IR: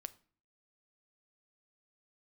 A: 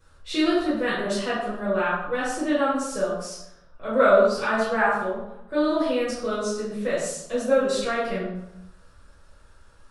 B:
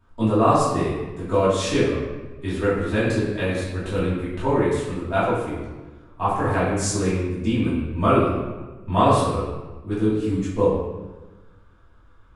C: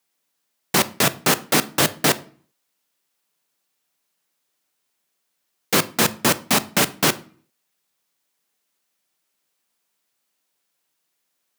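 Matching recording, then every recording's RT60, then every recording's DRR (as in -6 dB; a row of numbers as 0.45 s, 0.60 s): C; 0.85 s, 1.2 s, 0.45 s; -10.5 dB, -11.5 dB, 14.0 dB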